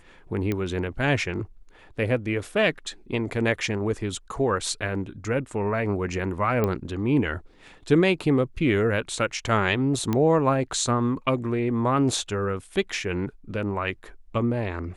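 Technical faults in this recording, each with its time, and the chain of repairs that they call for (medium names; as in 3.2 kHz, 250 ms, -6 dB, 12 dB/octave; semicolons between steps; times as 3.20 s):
0.52 s: pop -14 dBFS
6.64 s: pop -12 dBFS
10.13 s: pop -12 dBFS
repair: de-click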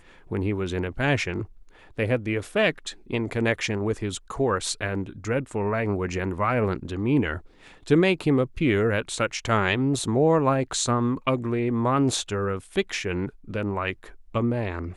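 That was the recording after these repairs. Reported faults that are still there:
nothing left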